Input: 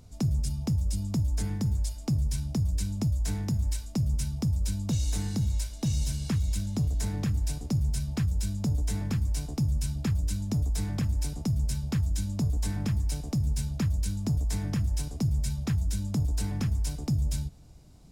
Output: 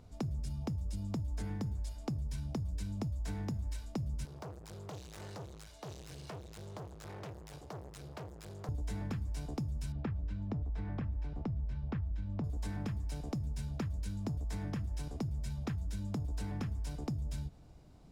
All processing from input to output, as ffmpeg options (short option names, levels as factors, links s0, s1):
-filter_complex "[0:a]asettb=1/sr,asplit=3[s0][s1][s2];[s0]atrim=end=4.254[s3];[s1]atrim=start=4.25:end=8.69,asetpts=PTS-STARTPTS,afade=t=in:d=0.004:c=qsin,afade=t=out:st=4.436:d=0.004:c=qsin,asoftclip=type=hard:threshold=0.0178,highpass=110,equalizer=f=240:t=o:w=0.69:g=-14.5[s4];[s2]atrim=start=8.686[s5];[s3][s4]acrossfade=d=0.004:c1=hsin:c2=qsin[s6];[s6][s5]acrossfade=d=0.004:c1=qsin:c2=hsin,asettb=1/sr,asplit=3[s7][s8][s9];[s7]atrim=end=9.924[s10];[s8]atrim=start=9.92:end=12.44,asetpts=PTS-STARTPTS,afade=t=in:d=0.004:c=qsin,afade=t=out:st=2.516:d=0.004:c=qsin,lowpass=2400,asubboost=boost=2:cutoff=110[s11];[s9]atrim=start=12.436[s12];[s10][s11]acrossfade=d=0.004:c1=hsin:c2=qsin[s13];[s13][s12]acrossfade=d=0.004:c1=qsin:c2=hsin,bass=f=250:g=-5,treble=f=4000:g=-12,acompressor=threshold=0.02:ratio=6,equalizer=f=2300:t=o:w=0.77:g=-2"